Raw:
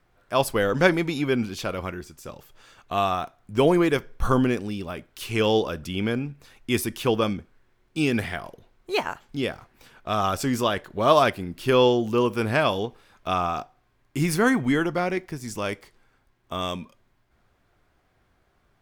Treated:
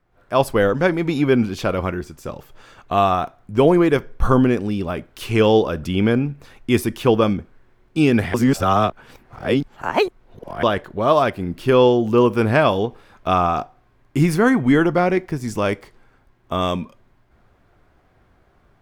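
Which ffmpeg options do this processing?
-filter_complex "[0:a]asplit=3[a][b][c];[a]atrim=end=8.342[d];[b]atrim=start=8.338:end=10.632,asetpts=PTS-STARTPTS,areverse[e];[c]atrim=start=10.628[f];[d][e]acrossfade=d=0.004:c1=hsin:c2=hsin[g];[g][f]acrossfade=d=0.004:c1=hsin:c2=hsin,highshelf=f=2.2k:g=-9,dynaudnorm=f=110:g=3:m=11dB,volume=-1.5dB"

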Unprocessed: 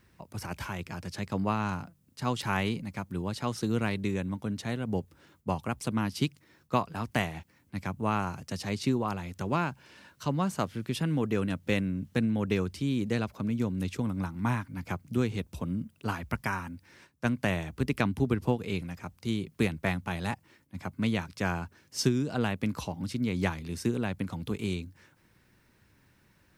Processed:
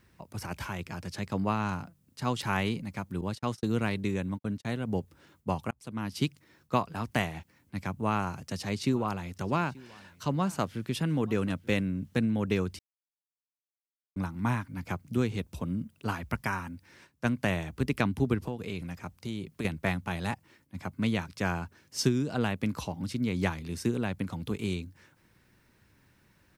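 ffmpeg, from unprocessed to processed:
-filter_complex "[0:a]asettb=1/sr,asplit=3[a][b][c];[a]atrim=end=3.214[d];[b]atrim=start=3.21:end=4.65,asetpts=PTS-STARTPTS,afade=t=in:d=0.004:c=qsin,afade=t=out:st=1.436:d=0.004:c=qsin,agate=range=-48dB:threshold=-38dB:ratio=16:release=100:detection=peak[e];[c]atrim=start=4.646[f];[d][e]acrossfade=d=0.004:c1=hsin:c2=qsin[g];[g][f]acrossfade=d=0.004:c1=qsin:c2=hsin,asplit=3[h][i][j];[h]afade=t=out:st=8.91:d=0.02[k];[i]aecho=1:1:883:0.075,afade=t=in:st=8.91:d=0.02,afade=t=out:st=11.81:d=0.02[l];[j]afade=t=in:st=11.81:d=0.02[m];[k][l][m]amix=inputs=3:normalize=0,asettb=1/sr,asplit=3[n][o][p];[n]atrim=end=18.474[q];[o]atrim=start=18.47:end=19.65,asetpts=PTS-STARTPTS,afade=t=in:d=0.004:c=qsin,afade=t=out:st=1.176:d=0.004:c=qsin,acompressor=threshold=-31dB:ratio=4:attack=3.2:release=140:knee=1:detection=peak[r];[p]atrim=start=19.646[s];[q][r]acrossfade=d=0.004:c1=hsin:c2=qsin[t];[t][s]acrossfade=d=0.004:c1=qsin:c2=hsin,asplit=4[u][v][w][x];[u]atrim=end=5.71,asetpts=PTS-STARTPTS,afade=t=out:st=5.706:d=0.004:c=hsin[y];[v]atrim=start=5.71:end=12.79,asetpts=PTS-STARTPTS,afade=t=in:d=0.54,afade=t=out:st=7.076:d=0.004:c=hsin[z];[w]atrim=start=12.79:end=14.16,asetpts=PTS-STARTPTS,volume=0[aa];[x]atrim=start=14.16,asetpts=PTS-STARTPTS,afade=t=in:d=0.004:c=hsin[ab];[y][z][aa][ab]concat=n=4:v=0:a=1"

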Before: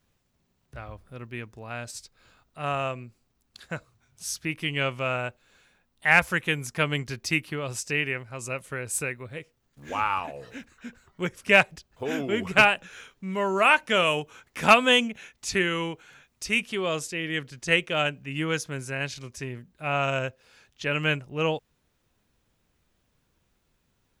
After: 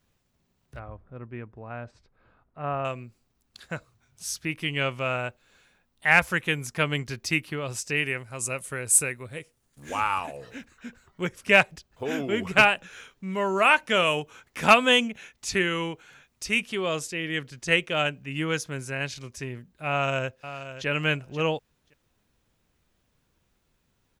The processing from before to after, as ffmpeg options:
-filter_complex "[0:a]asettb=1/sr,asplit=3[a][b][c];[a]atrim=end=0.794[d];[b]atrim=start=0.79:end=2.85,asetpts=PTS-STARTPTS,afade=t=in:d=0.004:c=qsin,afade=t=out:st=2.056:d=0.004:c=qsin,lowpass=1.4k[e];[c]atrim=start=2.846[f];[d][e]acrossfade=d=0.004:c1=hsin:c2=qsin[g];[g][f]acrossfade=d=0.004:c1=qsin:c2=hsin,asettb=1/sr,asplit=3[h][i][j];[h]atrim=end=7.964[k];[i]atrim=start=7.96:end=10.37,asetpts=PTS-STARTPTS,afade=t=in:d=0.004:c=qsin,afade=t=out:st=2.406:d=0.004:c=qsin,equalizer=f=9.5k:w=1.1:g=12.5[l];[j]atrim=start=10.366[m];[k][l]acrossfade=d=0.004:c1=hsin:c2=qsin[n];[n][m]acrossfade=d=0.004:c1=qsin:c2=hsin,asplit=2[o][p];[p]afade=t=in:st=19.9:d=0.01,afade=t=out:st=20.87:d=0.01,aecho=0:1:530|1060:0.251189|0.0251189[q];[o][q]amix=inputs=2:normalize=0"

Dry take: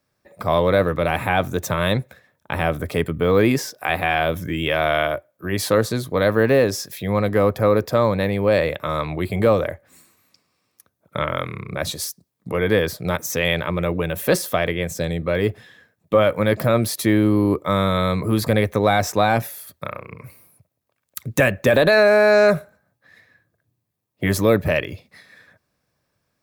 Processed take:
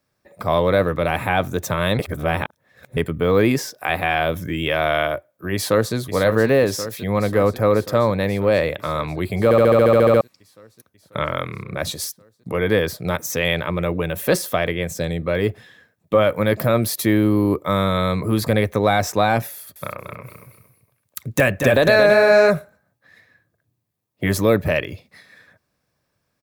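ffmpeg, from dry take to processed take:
-filter_complex "[0:a]asplit=2[a][b];[b]afade=t=in:st=5.54:d=0.01,afade=t=out:st=5.95:d=0.01,aecho=0:1:540|1080|1620|2160|2700|3240|3780|4320|4860|5400|5940|6480:0.334965|0.251224|0.188418|0.141314|0.105985|0.0794889|0.0596167|0.0447125|0.0335344|0.0251508|0.0188631|0.0141473[c];[a][c]amix=inputs=2:normalize=0,asettb=1/sr,asplit=3[d][e][f];[d]atrim=end=16.284[g];[e]atrim=start=16.28:end=17.84,asetpts=PTS-STARTPTS,afade=t=in:d=0.004:c=qsin,afade=t=out:st=1.556:d=0.004:c=qsin,equalizer=f=14k:w=2.2:g=7.5[h];[f]atrim=start=17.836[i];[g][h]acrossfade=d=0.004:c1=hsin:c2=qsin[j];[j][i]acrossfade=d=0.004:c1=qsin:c2=hsin,asettb=1/sr,asplit=3[k][l][m];[k]atrim=end=19.534[n];[l]atrim=start=19.53:end=22.49,asetpts=PTS-STARTPTS,afade=t=in:d=0.004:c=qsin,afade=t=out:st=2.956:d=0.004:c=qsin,aecho=1:1:227|454|681:0.473|0.118|0.0296,atrim=end_sample=130536[o];[m]atrim=start=22.486[p];[n][o]acrossfade=d=0.004:c1=hsin:c2=qsin[q];[q][p]acrossfade=d=0.004:c1=qsin:c2=hsin,asplit=14[r][s][t][u][v][w][x][y][z][aa][ab][ac][ad][ae];[r]atrim=end=1.992[af];[s]atrim=start=1.988:end=2.972,asetpts=PTS-STARTPTS,areverse[ag];[t]atrim=start=2.968:end=9.512[ah];[u]atrim=start=9.438:end=9.512[ai];[v]atrim=start=9.438:end=9.512[aj];[w]atrim=start=9.438:end=9.512[ak];[x]atrim=start=9.438:end=9.512[al];[y]atrim=start=9.438:end=9.512[am];[z]atrim=start=9.438:end=9.512[an];[aa]atrim=start=9.438:end=9.512[ao];[ab]atrim=start=9.438:end=9.512[ap];[ac]atrim=start=9.438:end=9.512[aq];[ad]atrim=start=9.438:end=9.512[ar];[ae]atrim=start=10.208[as];[af][ag]acrossfade=d=0.004:c1=hsin:c2=hsin[at];[at][ah]acrossfade=d=0.004:c1=hsin:c2=hsin[au];[au][ai]acrossfade=d=0.004:c1=hsin:c2=hsin[av];[av][aj]acrossfade=d=0.004:c1=hsin:c2=hsin[aw];[aw][ak]acrossfade=d=0.004:c1=hsin:c2=hsin[ax];[ax][al]acrossfade=d=0.004:c1=hsin:c2=hsin[ay];[ay][am]acrossfade=d=0.004:c1=hsin:c2=hsin[az];[az][an]acrossfade=d=0.004:c1=hsin:c2=hsin[ba];[ba][ao]acrossfade=d=0.004:c1=hsin:c2=hsin[bb];[bb][ap]acrossfade=d=0.004:c1=hsin:c2=hsin[bc];[bc][aq]acrossfade=d=0.004:c1=hsin:c2=hsin[bd];[bd][ar]acrossfade=d=0.004:c1=hsin:c2=hsin[be];[be][as]acrossfade=d=0.004:c1=hsin:c2=hsin"

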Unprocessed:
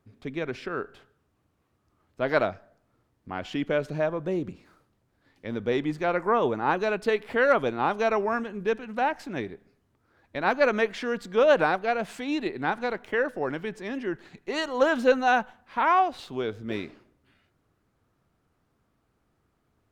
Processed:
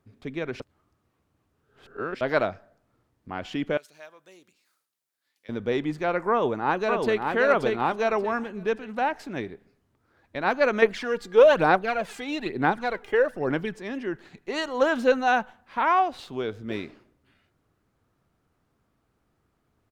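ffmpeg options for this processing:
-filter_complex "[0:a]asettb=1/sr,asplit=3[a][b][c];[a]atrim=end=3.774[d];[b]atrim=start=3.77:end=5.49,asetpts=PTS-STARTPTS,afade=t=in:d=0.004:c=qsin,afade=t=out:st=1.716:d=0.004:c=qsin,aderivative[e];[c]atrim=start=5.486[f];[d][e]acrossfade=d=0.004:c1=hsin:c2=qsin[g];[g][f]acrossfade=d=0.004:c1=qsin:c2=hsin,asplit=2[h][i];[i]afade=t=in:st=6.3:d=0.01,afade=t=out:st=7.34:d=0.01,aecho=0:1:580|1160|1740|2320:0.630957|0.189287|0.0567862|0.0170358[j];[h][j]amix=inputs=2:normalize=0,asettb=1/sr,asplit=3[k][l][m];[k]atrim=end=10.824[n];[l]atrim=start=10.82:end=13.75,asetpts=PTS-STARTPTS,afade=t=in:d=0.004:c=qsin,afade=t=out:st=2.926:d=0.004:c=qsin,aphaser=in_gain=1:out_gain=1:delay=2.5:decay=0.54:speed=1.1:type=sinusoidal[o];[m]atrim=start=13.746[p];[n][o]acrossfade=d=0.004:c1=hsin:c2=qsin[q];[q][p]acrossfade=d=0.004:c1=qsin:c2=hsin,asplit=3[r][s][t];[r]atrim=end=0.602[u];[s]atrim=start=0.598:end=2.212,asetpts=PTS-STARTPTS,areverse[v];[t]atrim=start=2.208[w];[u][v]acrossfade=d=0.004:c1=hsin:c2=hsin[x];[x][w]acrossfade=d=0.004:c1=hsin:c2=hsin"

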